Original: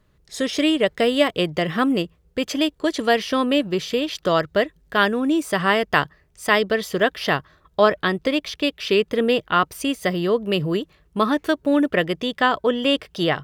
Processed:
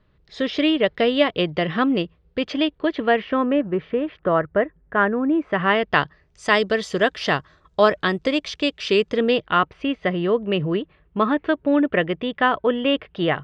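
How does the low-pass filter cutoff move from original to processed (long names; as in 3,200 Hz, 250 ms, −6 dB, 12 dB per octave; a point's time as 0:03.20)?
low-pass filter 24 dB per octave
0:02.47 4,200 Hz
0:03.65 1,900 Hz
0:05.32 1,900 Hz
0:05.97 4,400 Hz
0:06.57 7,800 Hz
0:09.03 7,800 Hz
0:09.69 3,000 Hz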